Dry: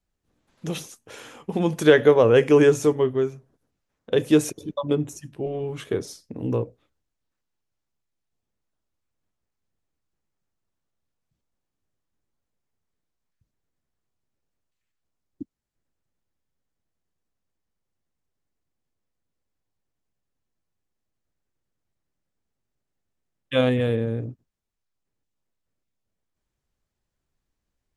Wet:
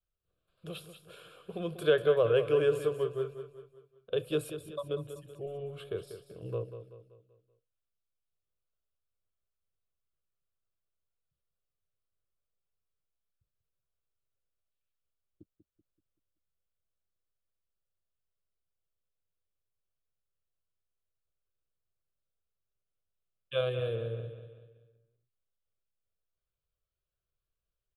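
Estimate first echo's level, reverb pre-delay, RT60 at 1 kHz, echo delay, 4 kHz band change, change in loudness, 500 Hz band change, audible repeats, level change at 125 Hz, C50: -10.5 dB, none, none, 0.191 s, -8.5 dB, -10.5 dB, -9.5 dB, 4, -11.0 dB, none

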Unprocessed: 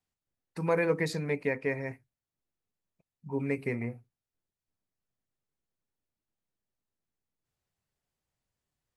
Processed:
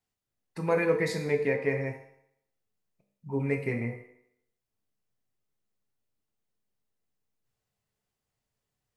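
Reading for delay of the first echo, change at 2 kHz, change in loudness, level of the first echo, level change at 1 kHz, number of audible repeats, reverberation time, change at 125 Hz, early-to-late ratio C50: none, +2.0 dB, +2.5 dB, none, +1.5 dB, none, 0.75 s, +2.5 dB, 7.5 dB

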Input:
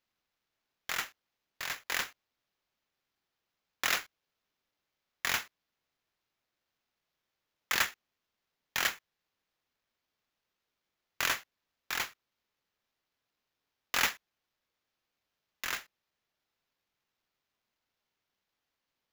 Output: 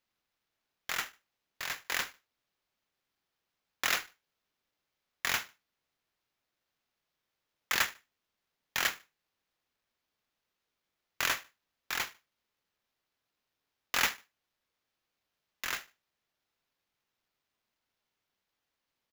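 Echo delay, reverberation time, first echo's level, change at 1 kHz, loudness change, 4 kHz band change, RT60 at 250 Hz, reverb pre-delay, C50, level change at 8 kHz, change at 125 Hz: 74 ms, none, -22.5 dB, 0.0 dB, 0.0 dB, 0.0 dB, none, none, none, 0.0 dB, 0.0 dB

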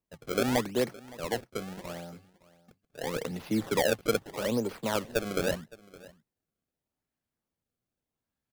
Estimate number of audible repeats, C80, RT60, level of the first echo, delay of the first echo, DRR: 1, none, none, -21.0 dB, 0.565 s, none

